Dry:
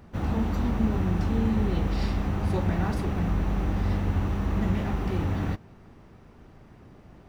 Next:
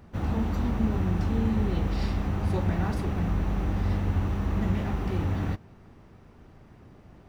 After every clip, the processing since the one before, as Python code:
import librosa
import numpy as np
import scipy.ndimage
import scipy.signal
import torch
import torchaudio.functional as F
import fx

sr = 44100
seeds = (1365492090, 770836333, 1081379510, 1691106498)

y = fx.peak_eq(x, sr, hz=90.0, db=2.0, octaves=0.77)
y = F.gain(torch.from_numpy(y), -1.5).numpy()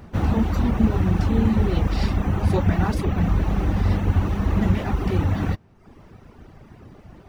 y = fx.dereverb_blind(x, sr, rt60_s=0.81)
y = F.gain(torch.from_numpy(y), 8.5).numpy()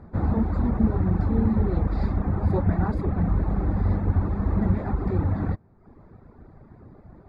y = np.convolve(x, np.full(15, 1.0 / 15))[:len(x)]
y = F.gain(torch.from_numpy(y), -2.5).numpy()